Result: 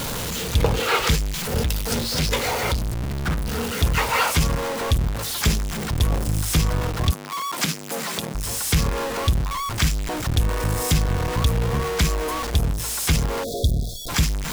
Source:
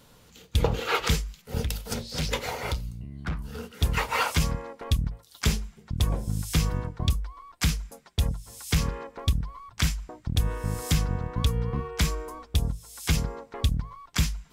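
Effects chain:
converter with a step at zero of −24 dBFS
0:07.11–0:08.35: high-pass filter 170 Hz 24 dB per octave
0:13.44–0:14.09: time-frequency box erased 740–3,300 Hz
level +2 dB

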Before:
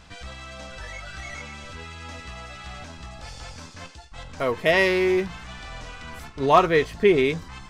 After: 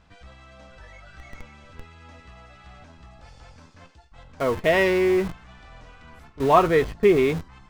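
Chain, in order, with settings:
noise gate −31 dBFS, range −7 dB
high-shelf EQ 3,000 Hz −10.5 dB
in parallel at −8.5 dB: comparator with hysteresis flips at −34.5 dBFS

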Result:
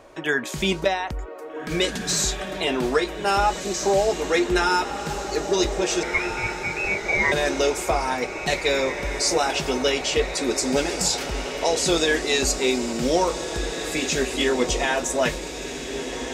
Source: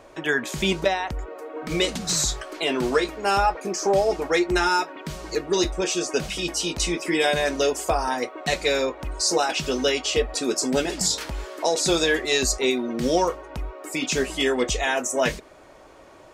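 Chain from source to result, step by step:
0:06.03–0:07.32: voice inversion scrambler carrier 2,600 Hz
feedback delay with all-pass diffusion 1,706 ms, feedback 57%, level −8.5 dB

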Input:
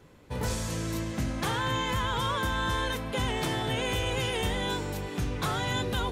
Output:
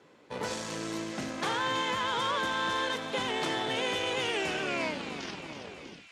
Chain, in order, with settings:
turntable brake at the end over 1.96 s
harmonic generator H 6 −22 dB, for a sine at −19.5 dBFS
band-pass filter 270–6,500 Hz
on a send: delay with a high-pass on its return 323 ms, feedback 67%, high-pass 2,100 Hz, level −9 dB

